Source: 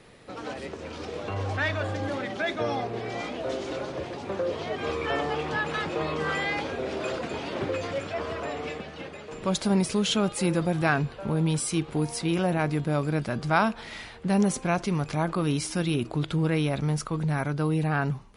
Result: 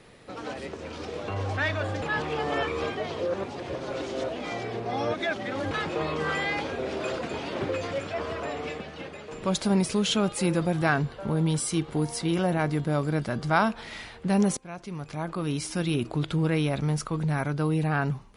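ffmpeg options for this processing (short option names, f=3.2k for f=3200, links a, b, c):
-filter_complex "[0:a]asettb=1/sr,asplit=3[a][b][c];[a]atrim=end=10.774[d];[b]atrim=start=10.77:end=13.69,asetpts=PTS-STARTPTS,afade=t=in:d=0.004:c=qsin,afade=t=out:st=2.916:d=0.004:c=qsin,bandreject=f=2.5k:w=12[e];[c]atrim=start=13.686[f];[d][e]acrossfade=d=0.004:c1=hsin:c2=qsin[g];[g][f]acrossfade=d=0.004:c1=qsin:c2=hsin,asplit=4[h][i][j][k];[h]atrim=end=2.022[l];[i]atrim=start=2.018:end=5.712,asetpts=PTS-STARTPTS,areverse[m];[j]atrim=start=5.708:end=14.57,asetpts=PTS-STARTPTS,afade=t=out:st=8.858:d=0.004:c=hsin:silence=0.105925[n];[k]atrim=start=14.57,asetpts=PTS-STARTPTS,afade=t=in:d=1.4:silence=0.105925[o];[l][m]acrossfade=d=0.004:c1=hsin:c2=hsin[p];[n][o]concat=n=2:v=0:a=1[q];[p][q]acrossfade=d=0.004:c1=hsin:c2=hsin"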